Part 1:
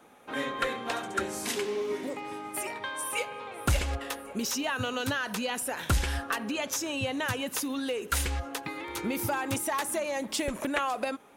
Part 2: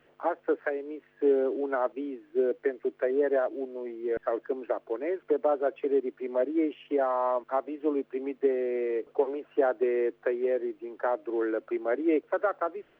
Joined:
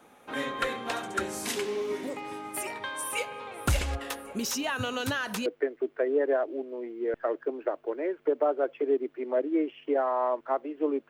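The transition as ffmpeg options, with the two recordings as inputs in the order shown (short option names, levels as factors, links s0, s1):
-filter_complex "[0:a]apad=whole_dur=11.09,atrim=end=11.09,atrim=end=5.462[s0];[1:a]atrim=start=2.488:end=8.12[s1];[s0][s1]acrossfade=d=0.004:c1=hsin:c2=hsin"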